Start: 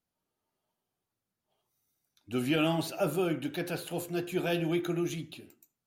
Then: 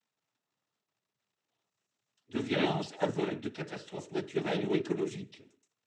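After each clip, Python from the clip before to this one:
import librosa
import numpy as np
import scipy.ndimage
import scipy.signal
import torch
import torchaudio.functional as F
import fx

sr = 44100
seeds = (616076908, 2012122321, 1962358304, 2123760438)

y = fx.dmg_crackle(x, sr, seeds[0], per_s=250.0, level_db=-57.0)
y = fx.noise_vocoder(y, sr, seeds[1], bands=12)
y = fx.upward_expand(y, sr, threshold_db=-38.0, expansion=1.5)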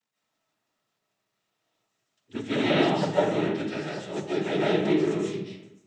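y = fx.rev_freeverb(x, sr, rt60_s=0.84, hf_ratio=0.6, predelay_ms=105, drr_db=-7.5)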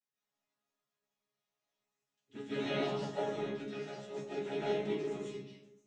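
y = fx.resonator_bank(x, sr, root=49, chord='fifth', decay_s=0.24)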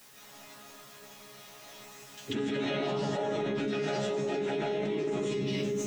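y = fx.env_flatten(x, sr, amount_pct=100)
y = y * librosa.db_to_amplitude(-1.0)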